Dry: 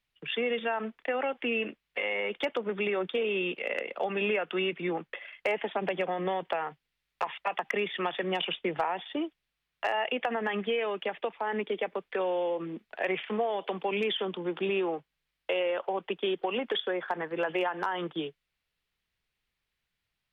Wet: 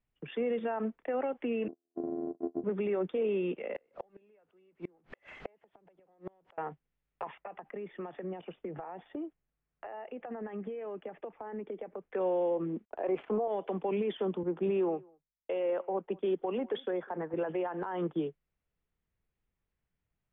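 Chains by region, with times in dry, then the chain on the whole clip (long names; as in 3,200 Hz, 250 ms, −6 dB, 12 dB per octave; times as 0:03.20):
0:01.68–0:02.64: samples sorted by size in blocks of 128 samples + flat-topped band-pass 400 Hz, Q 1.1 + amplitude modulation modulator 81 Hz, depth 80%
0:03.75–0:06.58: converter with a step at zero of −36 dBFS + low-shelf EQ 210 Hz −7 dB + gate with flip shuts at −24 dBFS, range −36 dB
0:07.35–0:12.13: notch filter 980 Hz, Q 18 + downward compressor, threshold −37 dBFS + low-pass filter 2,400 Hz
0:12.85–0:13.48: mu-law and A-law mismatch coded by A + flat-topped bell 570 Hz +8.5 dB 2.6 octaves + notch filter 1,900 Hz, Q 21
0:14.43–0:17.34: single-tap delay 199 ms −22.5 dB + multiband upward and downward expander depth 100%
whole clip: low-pass filter 2,800 Hz 12 dB per octave; brickwall limiter −24.5 dBFS; tilt shelving filter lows +8.5 dB, about 1,100 Hz; level −4.5 dB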